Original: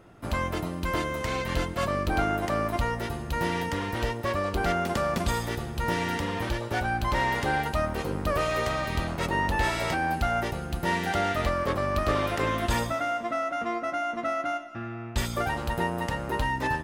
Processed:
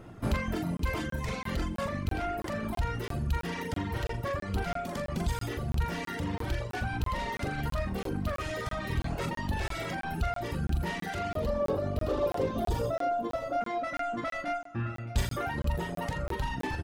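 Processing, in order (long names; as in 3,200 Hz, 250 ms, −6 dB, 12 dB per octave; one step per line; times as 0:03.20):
mains-hum notches 50/100/150 Hz
soft clipping −27 dBFS, distortion −11 dB
flutter between parallel walls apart 7.1 metres, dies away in 0.47 s
brickwall limiter −26.5 dBFS, peak gain reduction 5.5 dB
low-shelf EQ 250 Hz +9 dB
speech leveller 2 s
single-tap delay 616 ms −14.5 dB
reverb reduction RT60 1.3 s
0:11.35–0:13.61: octave-band graphic EQ 500/2,000/8,000 Hz +10/−11/−5 dB
regular buffer underruns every 0.33 s, samples 1,024, zero, from 0:00.77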